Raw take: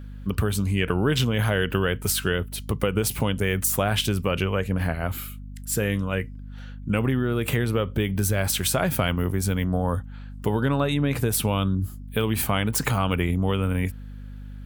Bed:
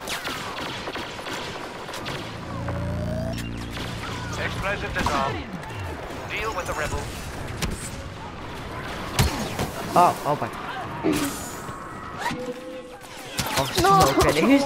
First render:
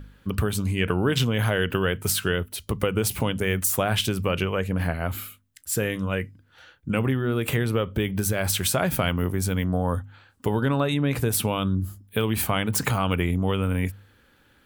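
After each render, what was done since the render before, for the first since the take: de-hum 50 Hz, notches 5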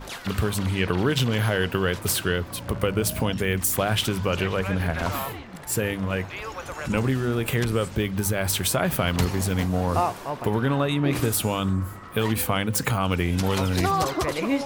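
add bed -7 dB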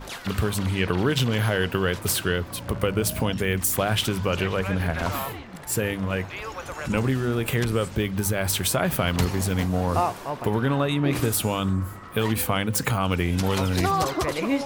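nothing audible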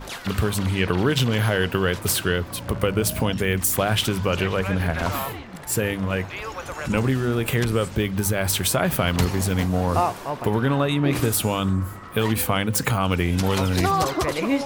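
gain +2 dB

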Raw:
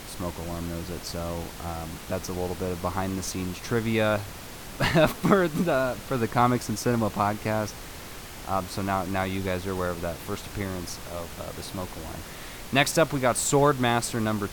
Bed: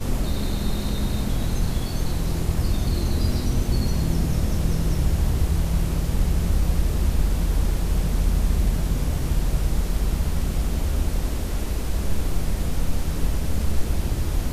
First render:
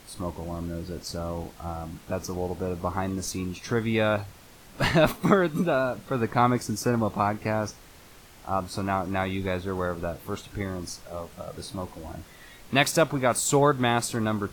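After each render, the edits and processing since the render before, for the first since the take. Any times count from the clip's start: noise print and reduce 10 dB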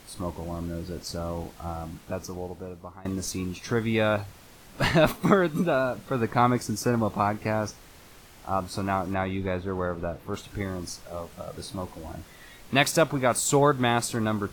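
1.84–3.05 fade out, to -20.5 dB; 9.14–10.34 high shelf 3700 Hz -11 dB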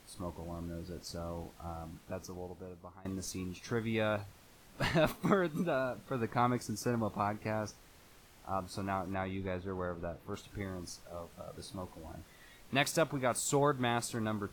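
gain -9 dB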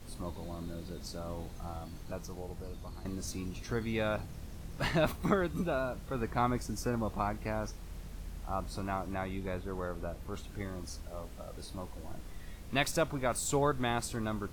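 add bed -23 dB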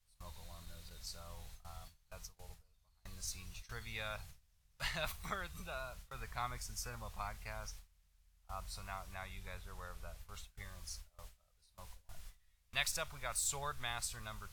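gate with hold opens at -32 dBFS; passive tone stack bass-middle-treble 10-0-10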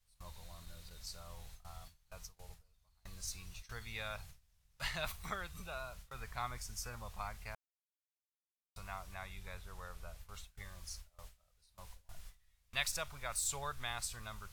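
7.55–8.76 mute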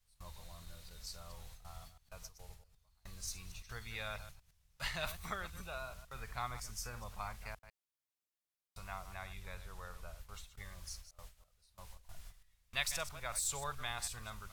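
reverse delay 0.11 s, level -12 dB

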